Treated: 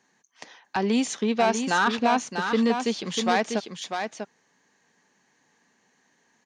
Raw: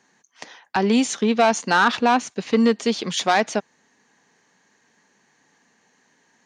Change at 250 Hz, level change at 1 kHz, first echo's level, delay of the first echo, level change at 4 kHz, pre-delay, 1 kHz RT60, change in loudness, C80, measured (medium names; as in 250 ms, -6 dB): -4.0 dB, -4.0 dB, -6.5 dB, 645 ms, -4.0 dB, no reverb, no reverb, -5.0 dB, no reverb